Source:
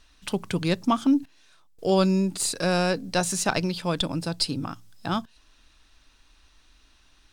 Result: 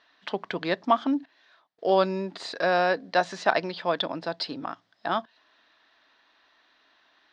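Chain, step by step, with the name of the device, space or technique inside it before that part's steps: phone earpiece (speaker cabinet 350–4100 Hz, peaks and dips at 670 Hz +7 dB, 1000 Hz +3 dB, 1800 Hz +7 dB, 2600 Hz -5 dB)

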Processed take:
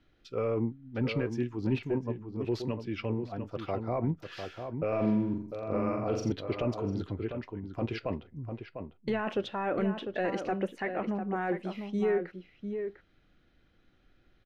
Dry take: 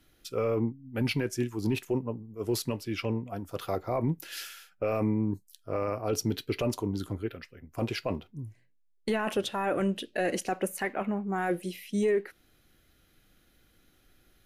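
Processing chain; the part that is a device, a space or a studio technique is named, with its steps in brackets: 4.88–6.32 flutter echo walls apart 7.3 m, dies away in 0.61 s; shout across a valley (air absorption 210 m; outdoor echo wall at 120 m, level -7 dB); gain -1.5 dB

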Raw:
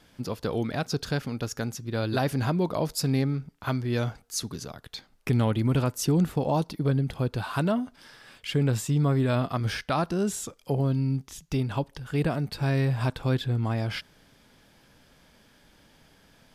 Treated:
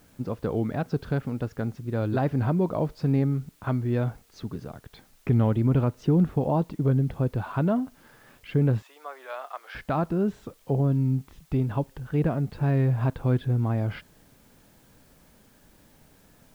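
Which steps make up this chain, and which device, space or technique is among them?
cassette deck with a dirty head (tape spacing loss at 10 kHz 44 dB; wow and flutter; white noise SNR 37 dB); 8.82–9.75 Bessel high-pass 950 Hz, order 6; gain +3 dB

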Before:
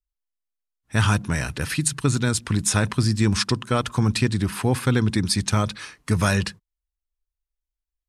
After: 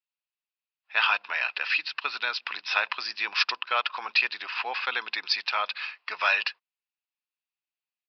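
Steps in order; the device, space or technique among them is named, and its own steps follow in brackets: low shelf 130 Hz +4.5 dB; musical greeting card (downsampling 11025 Hz; HPF 740 Hz 24 dB/oct; bell 2600 Hz +11 dB 0.28 oct)

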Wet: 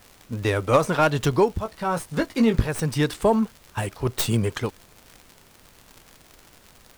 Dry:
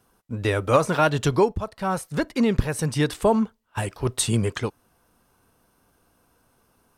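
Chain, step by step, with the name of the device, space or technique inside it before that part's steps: 1.63–2.69 doubler 18 ms -6.5 dB; record under a worn stylus (tracing distortion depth 0.14 ms; crackle 110/s -33 dBFS; pink noise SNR 29 dB)

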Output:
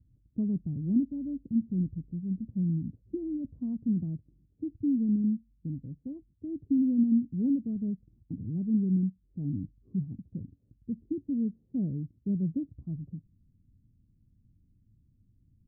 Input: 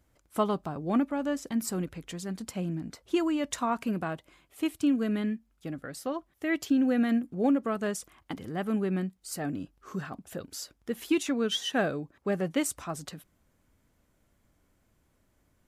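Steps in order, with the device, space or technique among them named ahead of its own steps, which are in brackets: 10–11.26 dynamic EQ 860 Hz, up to -4 dB, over -42 dBFS, Q 0.8; the neighbour's flat through the wall (LPF 240 Hz 24 dB/oct; bell 110 Hz +7.5 dB 0.67 oct); gain +4 dB

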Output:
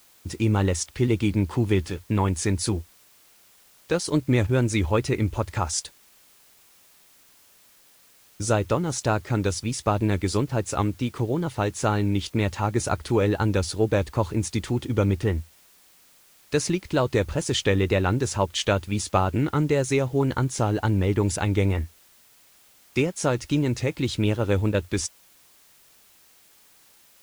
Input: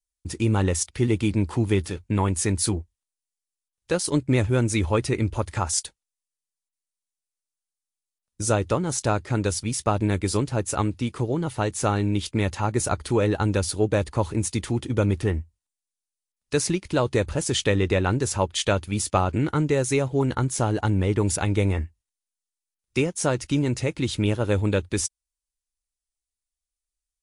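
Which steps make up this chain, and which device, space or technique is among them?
worn cassette (LPF 7500 Hz 12 dB/oct; wow and flutter; level dips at 4.47/10.47/24.72, 21 ms -6 dB; white noise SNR 31 dB)

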